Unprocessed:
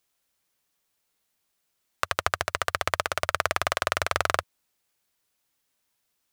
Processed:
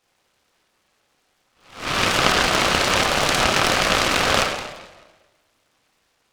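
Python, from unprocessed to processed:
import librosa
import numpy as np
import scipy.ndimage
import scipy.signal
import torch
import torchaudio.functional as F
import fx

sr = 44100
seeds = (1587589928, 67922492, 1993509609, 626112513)

p1 = fx.spec_swells(x, sr, rise_s=0.5)
p2 = scipy.signal.sosfilt(scipy.signal.butter(2, 360.0, 'highpass', fs=sr, output='sos'), p1)
p3 = fx.tilt_shelf(p2, sr, db=-7.0, hz=1100.0)
p4 = fx.over_compress(p3, sr, threshold_db=-34.0, ratio=-1.0)
p5 = p3 + (p4 * librosa.db_to_amplitude(0.0))
p6 = fx.spacing_loss(p5, sr, db_at_10k=44)
p7 = fx.doubler(p6, sr, ms=30.0, db=-3)
p8 = fx.room_shoebox(p7, sr, seeds[0], volume_m3=960.0, walls='mixed', distance_m=2.0)
p9 = fx.noise_mod_delay(p8, sr, seeds[1], noise_hz=1300.0, depth_ms=0.15)
y = p9 * librosa.db_to_amplitude(3.5)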